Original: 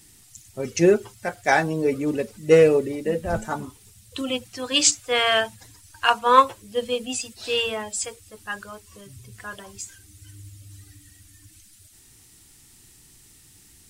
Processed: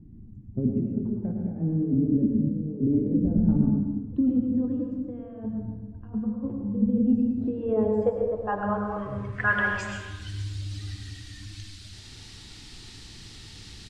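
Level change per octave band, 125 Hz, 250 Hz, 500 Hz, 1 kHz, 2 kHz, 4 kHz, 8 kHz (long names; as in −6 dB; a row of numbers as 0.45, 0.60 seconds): +6.0 dB, +6.0 dB, −8.5 dB, −12.0 dB, −4.0 dB, below −15 dB, below −20 dB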